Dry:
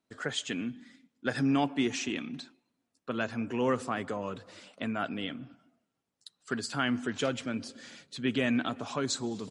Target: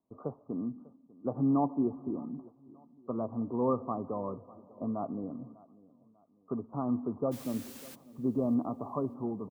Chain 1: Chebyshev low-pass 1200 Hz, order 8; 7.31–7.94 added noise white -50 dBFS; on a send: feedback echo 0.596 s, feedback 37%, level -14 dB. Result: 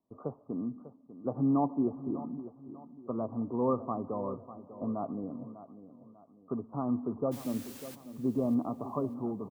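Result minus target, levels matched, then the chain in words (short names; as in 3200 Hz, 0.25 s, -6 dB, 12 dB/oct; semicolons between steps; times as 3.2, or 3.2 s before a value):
echo-to-direct +8 dB
Chebyshev low-pass 1200 Hz, order 8; 7.31–7.94 added noise white -50 dBFS; on a send: feedback echo 0.596 s, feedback 37%, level -22 dB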